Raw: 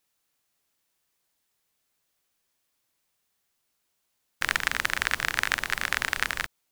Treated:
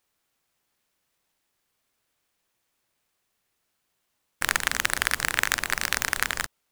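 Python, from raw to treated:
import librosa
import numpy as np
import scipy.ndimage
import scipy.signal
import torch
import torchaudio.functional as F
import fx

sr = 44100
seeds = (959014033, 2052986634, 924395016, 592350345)

y = fx.noise_mod_delay(x, sr, seeds[0], noise_hz=5400.0, depth_ms=0.05)
y = y * 10.0 ** (1.5 / 20.0)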